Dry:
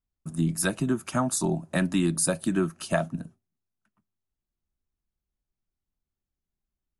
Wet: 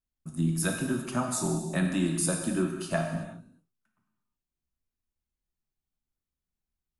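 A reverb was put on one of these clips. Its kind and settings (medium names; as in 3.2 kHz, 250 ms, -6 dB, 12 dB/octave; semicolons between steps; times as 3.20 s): gated-style reverb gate 400 ms falling, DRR 1.5 dB; trim -5 dB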